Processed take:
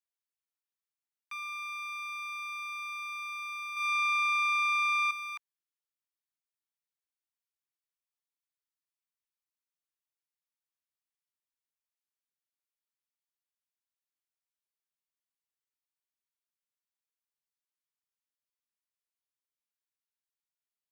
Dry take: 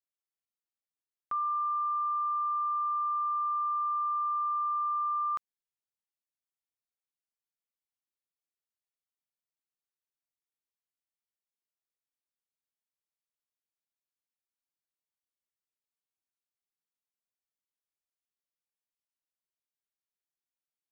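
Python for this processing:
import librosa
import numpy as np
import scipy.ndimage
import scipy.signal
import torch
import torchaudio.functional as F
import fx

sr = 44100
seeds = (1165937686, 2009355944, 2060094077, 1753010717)

y = np.minimum(x, 2.0 * 10.0 ** (-39.0 / 20.0) - x)
y = scipy.signal.sosfilt(scipy.signal.ellip(4, 1.0, 50, 910.0, 'highpass', fs=sr, output='sos'), y)
y = fx.room_flutter(y, sr, wall_m=6.2, rt60_s=0.83, at=(3.73, 5.11))
y = y * 10.0 ** (-2.5 / 20.0)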